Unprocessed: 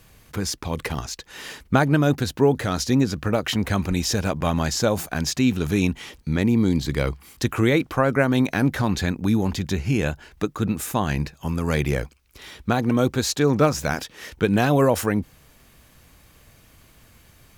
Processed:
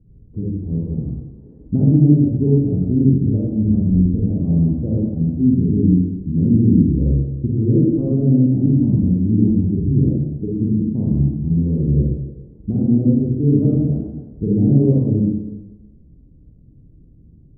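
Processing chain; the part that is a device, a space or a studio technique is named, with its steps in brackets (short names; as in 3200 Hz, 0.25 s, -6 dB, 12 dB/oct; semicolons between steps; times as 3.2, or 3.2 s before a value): next room (LPF 310 Hz 24 dB/oct; reverb RT60 1.2 s, pre-delay 37 ms, DRR -6 dB); gain +2 dB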